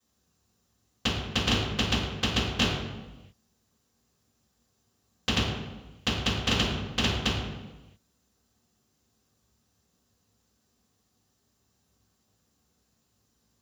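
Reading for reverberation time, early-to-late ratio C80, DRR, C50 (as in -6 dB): not exponential, 3.0 dB, -16.0 dB, 0.5 dB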